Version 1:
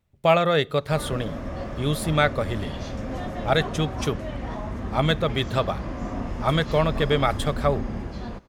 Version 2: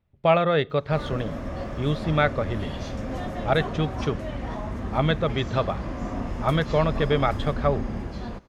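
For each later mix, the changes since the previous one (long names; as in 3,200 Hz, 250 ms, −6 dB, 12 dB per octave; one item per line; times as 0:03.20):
speech: add high-frequency loss of the air 210 metres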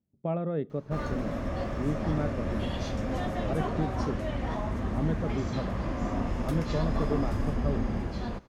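speech: add resonant band-pass 240 Hz, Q 2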